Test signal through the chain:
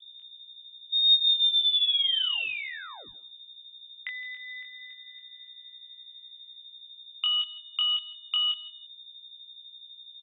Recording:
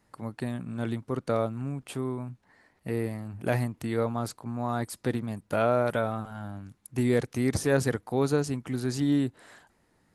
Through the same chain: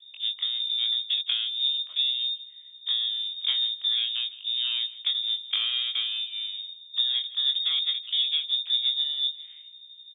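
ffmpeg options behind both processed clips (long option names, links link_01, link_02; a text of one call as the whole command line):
ffmpeg -i in.wav -filter_complex "[0:a]acompressor=threshold=-29dB:ratio=8,aeval=exprs='val(0)+0.00282*(sin(2*PI*60*n/s)+sin(2*PI*2*60*n/s)/2+sin(2*PI*3*60*n/s)/3+sin(2*PI*4*60*n/s)/4+sin(2*PI*5*60*n/s)/5)':channel_layout=same,adynamicsmooth=sensitivity=0.5:basefreq=520,crystalizer=i=4:c=0,afreqshift=-84,asplit=2[link_01][link_02];[link_02]adelay=22,volume=-4dB[link_03];[link_01][link_03]amix=inputs=2:normalize=0,asplit=2[link_04][link_05];[link_05]adelay=163,lowpass=frequency=1700:poles=1,volume=-17dB,asplit=2[link_06][link_07];[link_07]adelay=163,lowpass=frequency=1700:poles=1,volume=0.26[link_08];[link_04][link_06][link_08]amix=inputs=3:normalize=0,lowpass=frequency=3100:width_type=q:width=0.5098,lowpass=frequency=3100:width_type=q:width=0.6013,lowpass=frequency=3100:width_type=q:width=0.9,lowpass=frequency=3100:width_type=q:width=2.563,afreqshift=-3700,volume=6.5dB" out.wav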